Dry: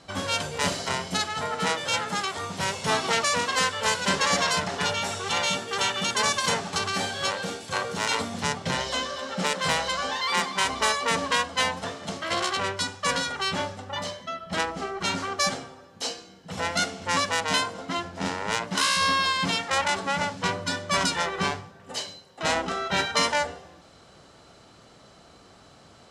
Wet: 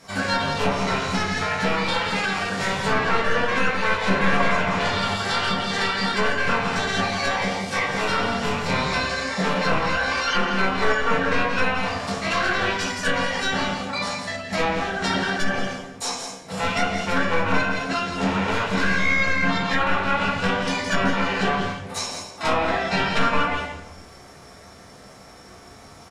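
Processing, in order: one-sided wavefolder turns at -20 dBFS; simulated room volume 180 m³, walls mixed, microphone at 1.6 m; formant shift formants +5 st; on a send: delay 167 ms -8 dB; on the sum: low-pass that closes with the level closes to 2.2 kHz, closed at -15.5 dBFS

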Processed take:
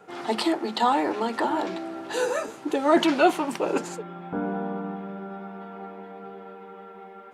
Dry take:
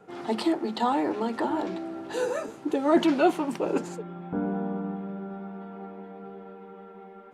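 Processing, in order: bass shelf 470 Hz -9.5 dB; trim +6.5 dB

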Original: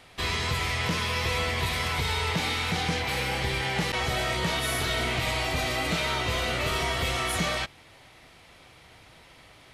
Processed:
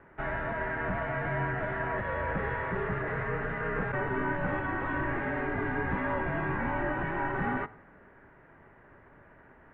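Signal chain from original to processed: on a send at -17 dB: reverberation RT60 0.90 s, pre-delay 4 ms; on the sum: mistuned SSB -360 Hz 200–2100 Hz

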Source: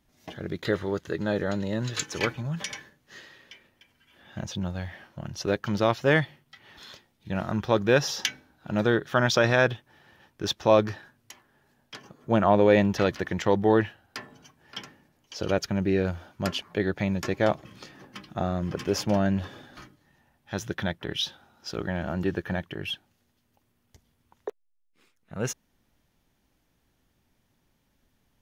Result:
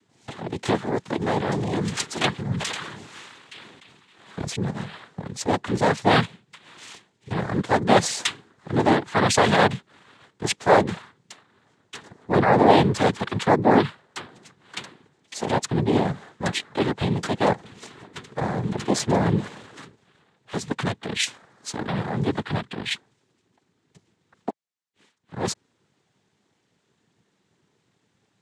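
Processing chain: noise-vocoded speech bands 6; 2.55–4.71 s: decay stretcher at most 39 dB/s; trim +4 dB

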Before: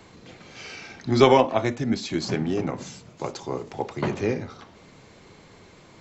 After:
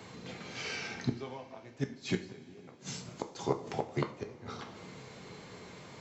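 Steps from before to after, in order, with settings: inverted gate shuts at -18 dBFS, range -29 dB; high-pass 69 Hz; two-slope reverb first 0.41 s, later 4 s, from -20 dB, DRR 5.5 dB

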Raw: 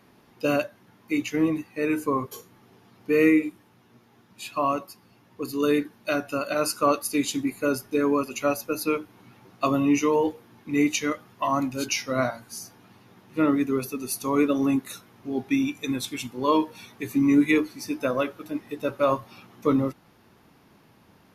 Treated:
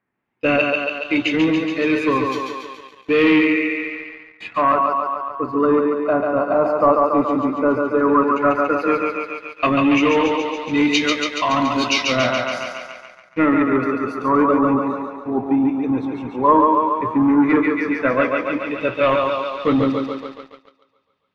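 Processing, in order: gate -45 dBFS, range -17 dB; thinning echo 141 ms, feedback 68%, high-pass 250 Hz, level -3.5 dB; waveshaping leveller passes 2; LFO low-pass sine 0.11 Hz 910–3900 Hz; trim -1.5 dB

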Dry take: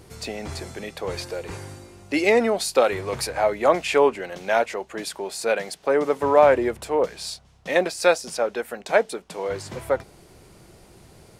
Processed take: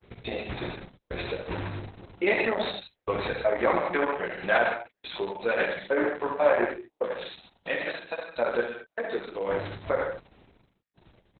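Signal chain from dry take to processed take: low-pass 8.6 kHz 24 dB/octave; gate -47 dBFS, range -48 dB; 6.17–8.26 s: high-pass 260 Hz 6 dB/octave; dynamic bell 1.7 kHz, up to +6 dB, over -39 dBFS, Q 2.4; compression 2:1, threshold -27 dBFS, peak gain reduction 9.5 dB; trance gate "x.x.xx...xx.xxx." 122 bpm -60 dB; early reflections 17 ms -4.5 dB, 67 ms -4.5 dB; gated-style reverb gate 190 ms flat, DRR 3 dB; Opus 6 kbps 48 kHz

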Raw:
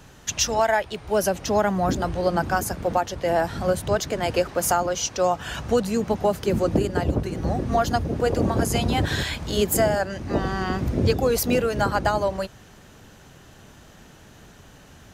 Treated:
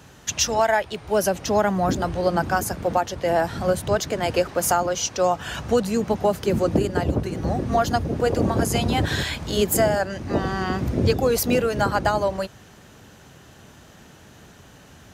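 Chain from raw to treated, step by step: high-pass 57 Hz; trim +1 dB

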